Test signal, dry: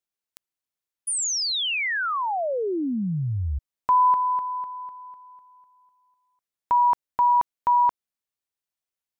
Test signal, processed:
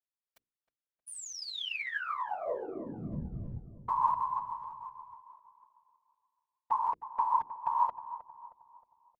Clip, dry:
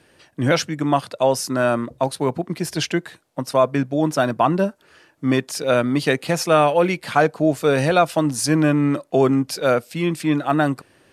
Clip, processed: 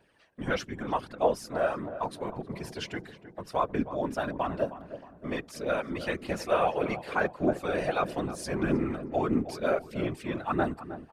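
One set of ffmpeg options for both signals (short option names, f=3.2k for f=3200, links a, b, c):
-filter_complex "[0:a]bass=f=250:g=-4,treble=f=4k:g=-8,bandreject=f=60:t=h:w=6,bandreject=f=120:t=h:w=6,bandreject=f=180:t=h:w=6,bandreject=f=240:t=h:w=6,bandreject=f=300:t=h:w=6,bandreject=f=360:t=h:w=6,bandreject=f=420:t=h:w=6,aphaser=in_gain=1:out_gain=1:delay=2.1:decay=0.43:speed=1.6:type=triangular,afftfilt=real='hypot(re,im)*cos(2*PI*random(0))':imag='hypot(re,im)*sin(2*PI*random(1))':win_size=512:overlap=0.75,asplit=2[a][b];[b]adelay=313,lowpass=f=1.3k:p=1,volume=-12dB,asplit=2[c][d];[d]adelay=313,lowpass=f=1.3k:p=1,volume=0.49,asplit=2[e][f];[f]adelay=313,lowpass=f=1.3k:p=1,volume=0.49,asplit=2[g][h];[h]adelay=313,lowpass=f=1.3k:p=1,volume=0.49,asplit=2[i][j];[j]adelay=313,lowpass=f=1.3k:p=1,volume=0.49[k];[a][c][e][g][i][k]amix=inputs=6:normalize=0,volume=-5dB"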